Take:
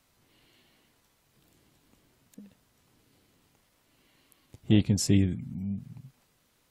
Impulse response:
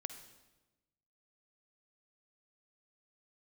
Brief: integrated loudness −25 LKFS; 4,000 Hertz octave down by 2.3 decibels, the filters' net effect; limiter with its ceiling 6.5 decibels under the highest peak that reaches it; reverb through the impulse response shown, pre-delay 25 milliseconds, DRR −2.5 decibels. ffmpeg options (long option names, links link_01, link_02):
-filter_complex "[0:a]equalizer=frequency=4000:width_type=o:gain=-3.5,alimiter=limit=-17.5dB:level=0:latency=1,asplit=2[link_01][link_02];[1:a]atrim=start_sample=2205,adelay=25[link_03];[link_02][link_03]afir=irnorm=-1:irlink=0,volume=5dB[link_04];[link_01][link_04]amix=inputs=2:normalize=0,volume=1.5dB"